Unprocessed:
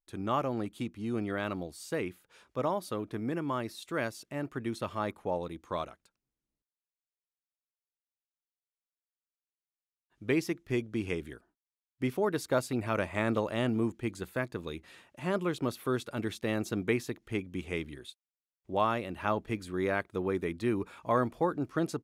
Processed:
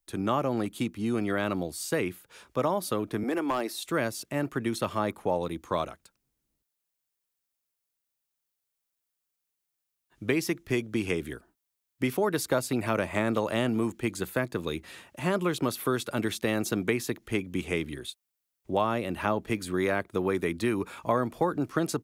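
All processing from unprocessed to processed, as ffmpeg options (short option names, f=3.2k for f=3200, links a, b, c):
-filter_complex "[0:a]asettb=1/sr,asplit=3[a][b][c];[a]atrim=end=3.234[d];[b]atrim=start=3.23:end=3.84,asetpts=PTS-STARTPTS,afade=t=in:d=0.004:c=qsin,afade=t=out:st=0.606:d=0.004:c=qsin,highpass=f=270:w=0.5412,highpass=f=270:w=1.3066,equalizer=f=760:w=7.8:g=9,asoftclip=type=hard:threshold=-27dB[e];[c]atrim=start=3.836[f];[d][e]acrossfade=d=0.004:c1=hsin:c2=qsin[g];[g][f]acrossfade=d=0.004:c1=qsin:c2=hsin,highshelf=f=8.4k:g=8,acrossover=split=130|700[h][i][j];[h]acompressor=threshold=-55dB:ratio=4[k];[i]acompressor=threshold=-33dB:ratio=4[l];[j]acompressor=threshold=-36dB:ratio=4[m];[k][l][m]amix=inputs=3:normalize=0,equalizer=f=69:t=o:w=2.5:g=2.5,volume=7dB"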